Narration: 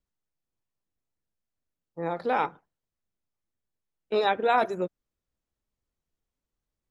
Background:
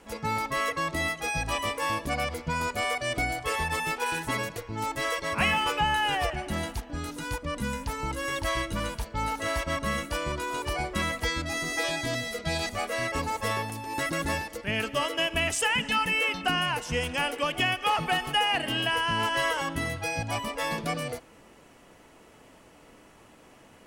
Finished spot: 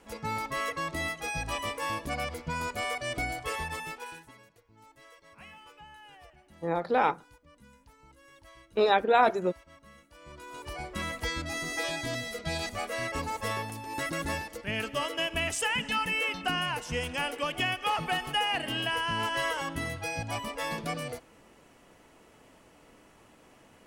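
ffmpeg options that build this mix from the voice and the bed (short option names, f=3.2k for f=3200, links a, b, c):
-filter_complex "[0:a]adelay=4650,volume=1dB[a];[1:a]volume=18dB,afade=t=out:st=3.45:d=0.88:silence=0.0841395,afade=t=in:st=10.14:d=1.2:silence=0.0794328[b];[a][b]amix=inputs=2:normalize=0"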